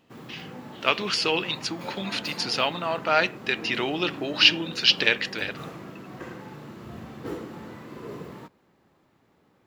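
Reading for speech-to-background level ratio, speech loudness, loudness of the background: 16.0 dB, -24.0 LUFS, -40.0 LUFS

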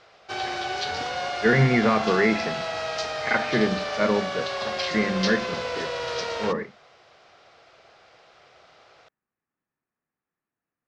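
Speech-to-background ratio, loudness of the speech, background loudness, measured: 5.0 dB, -24.0 LUFS, -29.0 LUFS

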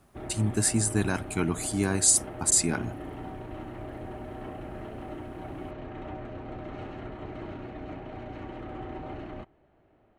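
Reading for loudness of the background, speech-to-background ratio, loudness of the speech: -40.0 LUFS, 15.0 dB, -25.0 LUFS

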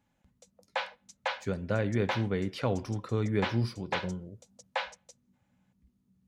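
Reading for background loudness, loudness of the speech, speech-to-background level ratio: -37.5 LUFS, -32.5 LUFS, 5.0 dB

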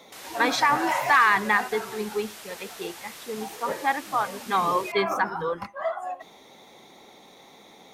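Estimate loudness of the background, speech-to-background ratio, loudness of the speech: -41.0 LUFS, 16.5 dB, -24.5 LUFS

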